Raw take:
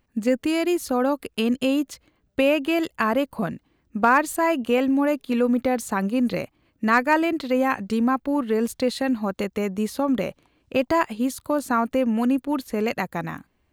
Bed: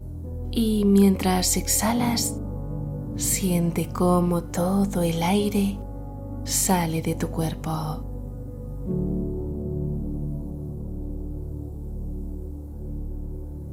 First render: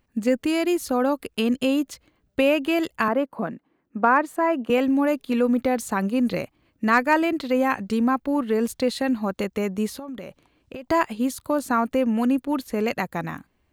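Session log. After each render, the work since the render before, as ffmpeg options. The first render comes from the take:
-filter_complex "[0:a]asettb=1/sr,asplit=3[a][b][c];[a]atrim=end=3.084[d];[b]atrim=start=3.08:end=4.7,asetpts=PTS-STARTPTS,afade=t=in:d=0.004:c=qsin,afade=t=out:st=1.616:d=0.004:c=qsin,acrossover=split=170 2100:gain=0.0891 1 0.224[e][f][g];[e][f][g]amix=inputs=3:normalize=0[h];[c]atrim=start=4.696[i];[d][h]acrossfade=d=0.004:c1=hsin:c2=qsin[j];[j][i]acrossfade=d=0.004:c1=qsin:c2=hsin,asplit=3[k][l][m];[k]afade=t=out:st=9.97:d=0.02[n];[l]acompressor=threshold=-31dB:ratio=16:attack=3.2:release=140:knee=1:detection=peak,afade=t=in:st=9.97:d=0.02,afade=t=out:st=10.84:d=0.02[o];[m]afade=t=in:st=10.84:d=0.02[p];[n][o][p]amix=inputs=3:normalize=0"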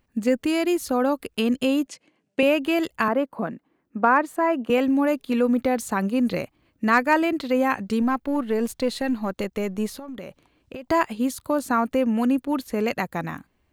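-filter_complex "[0:a]asettb=1/sr,asplit=3[a][b][c];[a]atrim=end=1.874[d];[b]atrim=start=1.87:end=2.43,asetpts=PTS-STARTPTS,afade=t=in:d=0.004:c=qsin,afade=t=out:st=0.556:d=0.004:c=qsin,highpass=f=160:w=0.5412,highpass=f=160:w=1.3066,equalizer=f=1.3k:t=q:w=4:g=-7,equalizer=f=2.6k:t=q:w=4:g=4,equalizer=f=3.8k:t=q:w=4:g=-5,lowpass=f=9.5k:w=0.5412,lowpass=f=9.5k:w=1.3066[e];[c]atrim=start=2.426[f];[d][e]acrossfade=d=0.004:c1=hsin:c2=qsin[g];[g][f]acrossfade=d=0.004:c1=qsin:c2=hsin,asettb=1/sr,asplit=3[h][i][j];[h]atrim=end=8.024[k];[i]atrim=start=8.02:end=10.17,asetpts=PTS-STARTPTS,afade=t=in:d=0.004:c=qsin,afade=t=out:st=2.146:d=0.004:c=qsin,aeval=exprs='if(lt(val(0),0),0.708*val(0),val(0))':c=same[l];[j]atrim=start=10.166[m];[k][l]acrossfade=d=0.004:c1=hsin:c2=qsin[n];[n][m]acrossfade=d=0.004:c1=qsin:c2=hsin"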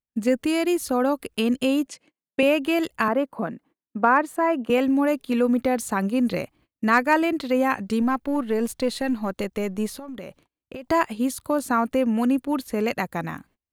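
-af "equalizer=f=10k:t=o:w=0.43:g=3.5,agate=range=-29dB:threshold=-53dB:ratio=16:detection=peak"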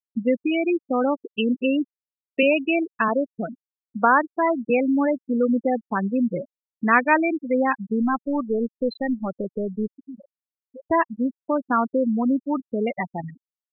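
-af "afftfilt=real='re*gte(hypot(re,im),0.158)':imag='im*gte(hypot(re,im),0.158)':win_size=1024:overlap=0.75,highshelf=f=2.3k:g=8.5"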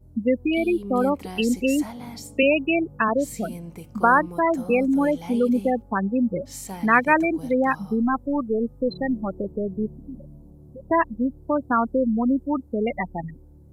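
-filter_complex "[1:a]volume=-14.5dB[a];[0:a][a]amix=inputs=2:normalize=0"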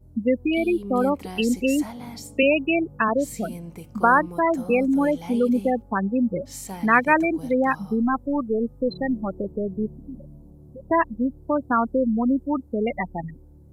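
-af anull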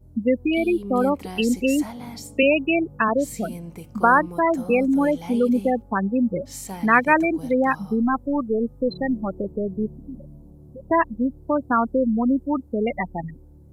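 -af "volume=1dB"

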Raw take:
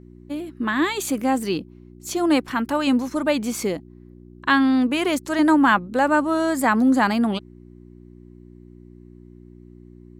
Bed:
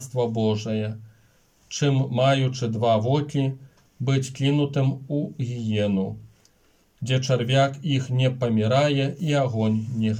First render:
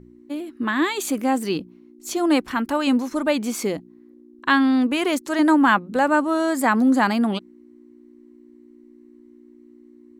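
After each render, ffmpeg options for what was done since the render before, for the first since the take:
-af "bandreject=f=60:t=h:w=4,bandreject=f=120:t=h:w=4,bandreject=f=180:t=h:w=4"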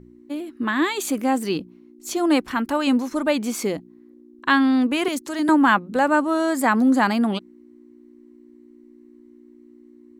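-filter_complex "[0:a]asettb=1/sr,asplit=3[a][b][c];[a]atrim=end=5.084[d];[b]atrim=start=5.08:end=5.49,asetpts=PTS-STARTPTS,afade=t=in:d=0.004:c=qsin,afade=t=out:st=0.406:d=0.004:c=qsin,acrossover=split=270|3000[e][f][g];[f]acompressor=threshold=-28dB:ratio=6:attack=3.2:release=140:knee=2.83:detection=peak[h];[e][h][g]amix=inputs=3:normalize=0[i];[c]atrim=start=5.486[j];[d][i]acrossfade=d=0.004:c1=hsin:c2=qsin[k];[k][j]acrossfade=d=0.004:c1=qsin:c2=hsin"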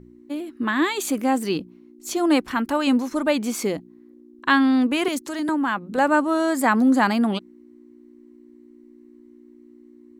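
-filter_complex "[0:a]asettb=1/sr,asplit=3[a][b][c];[a]atrim=end=5.264[d];[b]atrim=start=5.26:end=5.98,asetpts=PTS-STARTPTS,afade=t=in:d=0.004:c=qsin,afade=t=out:st=0.716:d=0.004:c=qsin,acompressor=threshold=-25dB:ratio=2:attack=3.2:release=140:knee=1:detection=peak[e];[c]atrim=start=5.976[f];[d][e]acrossfade=d=0.004:c1=hsin:c2=qsin[g];[g][f]acrossfade=d=0.004:c1=qsin:c2=hsin"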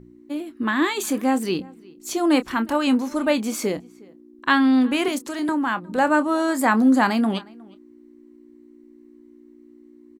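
-filter_complex "[0:a]asplit=2[a][b];[b]adelay=27,volume=-12.5dB[c];[a][c]amix=inputs=2:normalize=0,asplit=2[d][e];[e]adelay=361.5,volume=-24dB,highshelf=f=4k:g=-8.13[f];[d][f]amix=inputs=2:normalize=0"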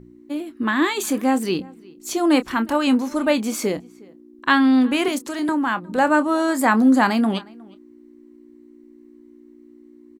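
-af "volume=1.5dB"

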